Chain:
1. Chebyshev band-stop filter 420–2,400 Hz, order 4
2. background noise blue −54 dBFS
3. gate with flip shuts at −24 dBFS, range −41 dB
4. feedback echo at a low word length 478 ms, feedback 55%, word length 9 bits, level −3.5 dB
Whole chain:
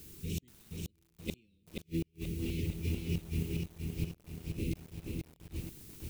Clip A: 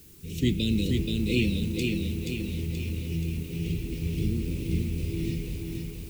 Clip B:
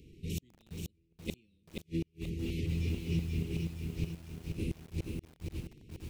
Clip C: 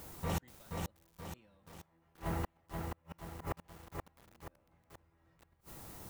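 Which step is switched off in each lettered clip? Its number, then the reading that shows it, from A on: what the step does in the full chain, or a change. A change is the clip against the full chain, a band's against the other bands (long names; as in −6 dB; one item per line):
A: 3, change in momentary loudness spread −4 LU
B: 2, 8 kHz band −3.0 dB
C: 1, 250 Hz band −5.5 dB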